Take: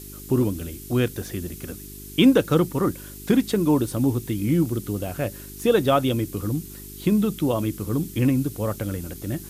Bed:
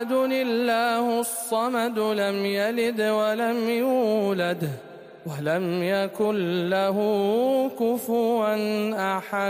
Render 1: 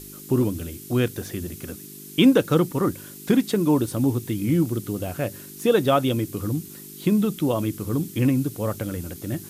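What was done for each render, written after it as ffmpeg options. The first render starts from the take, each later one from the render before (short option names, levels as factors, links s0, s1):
-af "bandreject=f=50:t=h:w=4,bandreject=f=100:t=h:w=4"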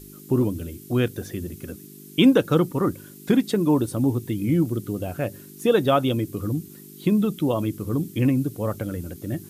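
-af "afftdn=nr=7:nf=-41"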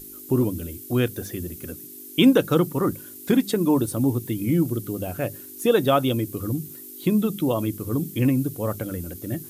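-af "highshelf=f=9800:g=10.5,bandreject=f=50:t=h:w=6,bandreject=f=100:t=h:w=6,bandreject=f=150:t=h:w=6,bandreject=f=200:t=h:w=6"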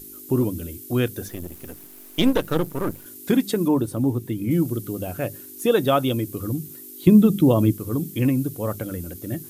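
-filter_complex "[0:a]asettb=1/sr,asplit=3[s0][s1][s2];[s0]atrim=end=1.284[s3];[s1]atrim=start=1.28:end=3.06,asetpts=PTS-STARTPTS,afade=t=in:d=0.004:c=qsin,afade=t=out:st=1.776:d=0.004:c=qsin,aeval=exprs='if(lt(val(0),0),0.251*val(0),val(0))':c=same[s4];[s2]atrim=start=3.056[s5];[s3][s4]acrossfade=d=0.004:c1=hsin:c2=qsin[s6];[s6][s5]acrossfade=d=0.004:c1=qsin:c2=hsin,asettb=1/sr,asplit=3[s7][s8][s9];[s7]atrim=end=3.684[s10];[s8]atrim=start=3.68:end=4.51,asetpts=PTS-STARTPTS,afade=t=in:d=0.004:c=qsin,afade=t=out:st=0.826:d=0.004:c=qsin,highshelf=f=2800:g=-7.5[s11];[s9]atrim=start=4.506[s12];[s10][s11]acrossfade=d=0.004:c1=hsin:c2=qsin[s13];[s13][s12]acrossfade=d=0.004:c1=qsin:c2=hsin,asettb=1/sr,asplit=3[s14][s15][s16];[s14]atrim=end=7.074[s17];[s15]atrim=start=7.07:end=7.73,asetpts=PTS-STARTPTS,afade=t=in:d=0.004:c=qsin,afade=t=out:st=0.656:d=0.004:c=qsin,lowshelf=f=450:g=10[s18];[s16]atrim=start=7.726[s19];[s17][s18]acrossfade=d=0.004:c1=hsin:c2=qsin[s20];[s20][s19]acrossfade=d=0.004:c1=qsin:c2=hsin"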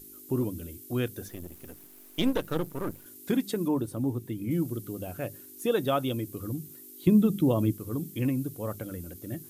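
-af "volume=0.422"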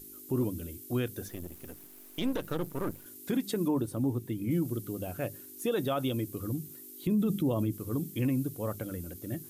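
-af "alimiter=limit=0.0891:level=0:latency=1:release=46"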